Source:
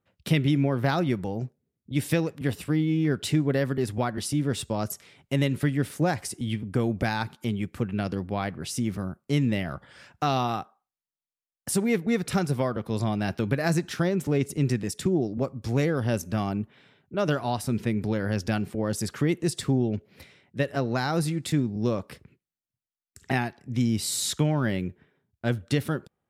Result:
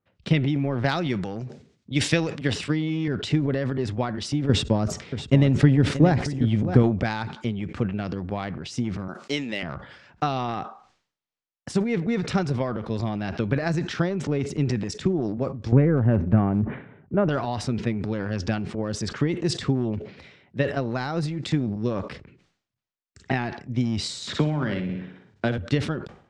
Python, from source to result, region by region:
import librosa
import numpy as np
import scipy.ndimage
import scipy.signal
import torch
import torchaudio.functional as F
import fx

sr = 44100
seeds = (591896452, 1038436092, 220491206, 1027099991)

y = fx.chain(x, sr, fx.highpass(hz=85.0, slope=12),
    fx.high_shelf(hz=2000.0, db=10.0), at=(0.84, 3.08))
y = fx.chain(y, sr, fx.low_shelf(hz=490.0, db=8.5),
    fx.echo_single(ms=631, db=-11.5), at=(4.49, 6.83))
y = fx.chain(y, sr, fx.highpass(hz=320.0, slope=12),
    fx.high_shelf(hz=2300.0, db=11.5), at=(9.08, 9.63))
y = fx.chain(y, sr, fx.lowpass(hz=2100.0, slope=24),
    fx.low_shelf(hz=430.0, db=9.5), at=(15.72, 17.29))
y = fx.chain(y, sr, fx.highpass(hz=110.0, slope=12),
    fx.room_flutter(wall_m=10.2, rt60_s=0.46),
    fx.band_squash(depth_pct=70), at=(24.27, 25.58))
y = scipy.signal.sosfilt(scipy.signal.bessel(6, 4500.0, 'lowpass', norm='mag', fs=sr, output='sos'), y)
y = fx.transient(y, sr, attack_db=6, sustain_db=10)
y = fx.sustainer(y, sr, db_per_s=110.0)
y = F.gain(torch.from_numpy(y), -3.0).numpy()